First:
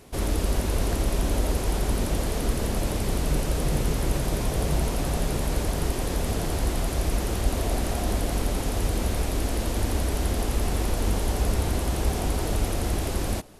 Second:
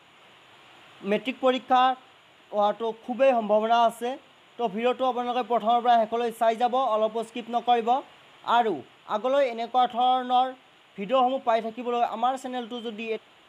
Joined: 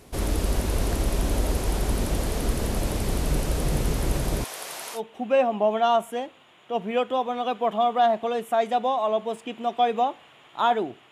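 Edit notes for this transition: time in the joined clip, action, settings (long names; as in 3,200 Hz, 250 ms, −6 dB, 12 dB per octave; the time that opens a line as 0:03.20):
first
0:04.44–0:05.01: high-pass filter 970 Hz 12 dB per octave
0:04.97: continue with second from 0:02.86, crossfade 0.08 s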